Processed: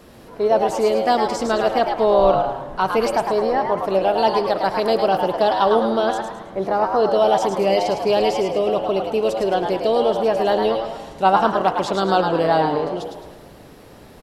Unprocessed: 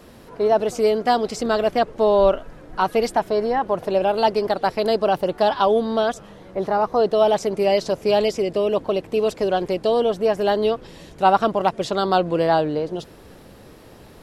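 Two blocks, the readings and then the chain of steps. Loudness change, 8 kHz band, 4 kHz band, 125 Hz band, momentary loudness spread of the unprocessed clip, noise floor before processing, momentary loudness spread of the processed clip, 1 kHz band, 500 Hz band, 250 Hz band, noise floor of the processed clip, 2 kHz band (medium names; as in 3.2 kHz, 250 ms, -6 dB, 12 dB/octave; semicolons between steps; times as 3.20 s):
+1.5 dB, no reading, +1.5 dB, +1.0 dB, 6 LU, -45 dBFS, 6 LU, +2.5 dB, +1.0 dB, +1.0 dB, -44 dBFS, +2.0 dB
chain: frequency-shifting echo 107 ms, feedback 36%, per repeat +120 Hz, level -6 dB; spring tank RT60 1.7 s, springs 31/41 ms, chirp 55 ms, DRR 11 dB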